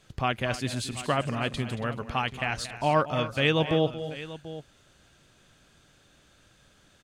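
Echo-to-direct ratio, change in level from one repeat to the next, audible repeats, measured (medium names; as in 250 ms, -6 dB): -10.0 dB, no regular repeats, 3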